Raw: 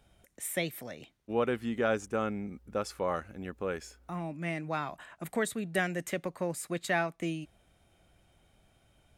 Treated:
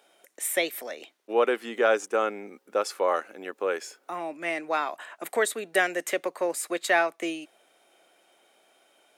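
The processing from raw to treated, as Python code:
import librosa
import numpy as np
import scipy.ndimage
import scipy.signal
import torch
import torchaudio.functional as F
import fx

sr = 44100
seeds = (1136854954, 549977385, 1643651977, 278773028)

y = scipy.signal.sosfilt(scipy.signal.butter(4, 350.0, 'highpass', fs=sr, output='sos'), x)
y = y * librosa.db_to_amplitude(7.5)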